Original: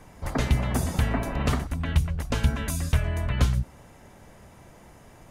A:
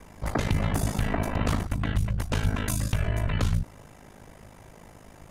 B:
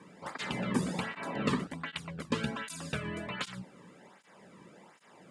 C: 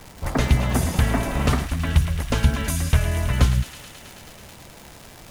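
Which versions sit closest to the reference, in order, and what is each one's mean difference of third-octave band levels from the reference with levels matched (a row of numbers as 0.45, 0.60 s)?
A, C, B; 2.0, 3.5, 5.5 dB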